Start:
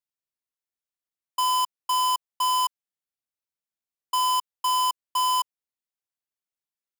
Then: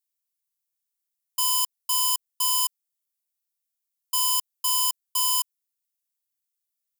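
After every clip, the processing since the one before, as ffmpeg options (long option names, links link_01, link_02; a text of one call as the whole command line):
ffmpeg -i in.wav -af "aderivative,volume=7dB" out.wav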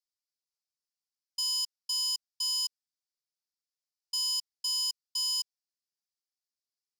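ffmpeg -i in.wav -af "bandpass=frequency=4900:width_type=q:width=3.9:csg=0,volume=2.5dB" out.wav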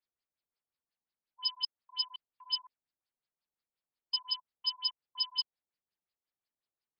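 ffmpeg -i in.wav -af "afftfilt=real='re*lt(b*sr/1024,930*pow(5400/930,0.5+0.5*sin(2*PI*5.6*pts/sr)))':imag='im*lt(b*sr/1024,930*pow(5400/930,0.5+0.5*sin(2*PI*5.6*pts/sr)))':win_size=1024:overlap=0.75,volume=4.5dB" out.wav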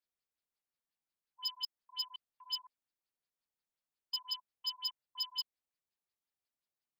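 ffmpeg -i in.wav -af "asoftclip=type=tanh:threshold=-26dB,volume=-2.5dB" out.wav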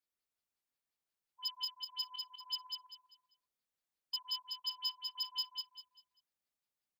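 ffmpeg -i in.wav -af "aecho=1:1:197|394|591|788:0.631|0.183|0.0531|0.0154,volume=-1.5dB" out.wav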